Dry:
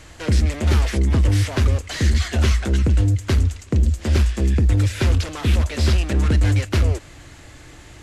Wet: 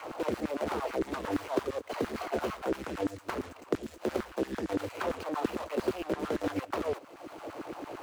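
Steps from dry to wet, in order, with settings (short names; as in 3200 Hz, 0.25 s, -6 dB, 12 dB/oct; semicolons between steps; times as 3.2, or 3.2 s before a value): median filter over 25 samples; LFO high-pass saw down 8.8 Hz 280–1500 Hz; three-band squash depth 70%; gain -4.5 dB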